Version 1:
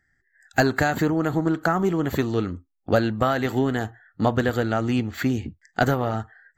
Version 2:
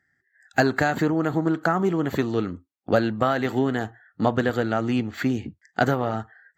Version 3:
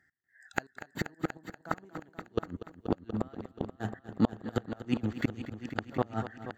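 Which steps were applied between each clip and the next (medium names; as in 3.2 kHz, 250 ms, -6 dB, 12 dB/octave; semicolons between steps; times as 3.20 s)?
high-pass 120 Hz; treble shelf 7.7 kHz -9 dB
trance gate "x..xxxx.x.xx.xx" 158 bpm -24 dB; inverted gate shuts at -14 dBFS, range -34 dB; multi-head delay 240 ms, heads all three, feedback 43%, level -14 dB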